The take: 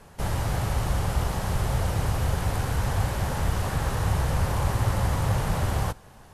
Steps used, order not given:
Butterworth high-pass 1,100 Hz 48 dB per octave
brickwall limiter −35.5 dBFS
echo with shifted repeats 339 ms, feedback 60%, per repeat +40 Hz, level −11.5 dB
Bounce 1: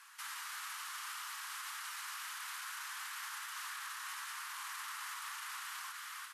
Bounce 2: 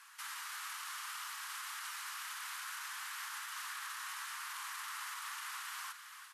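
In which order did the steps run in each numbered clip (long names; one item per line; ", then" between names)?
Butterworth high-pass, then echo with shifted repeats, then brickwall limiter
Butterworth high-pass, then brickwall limiter, then echo with shifted repeats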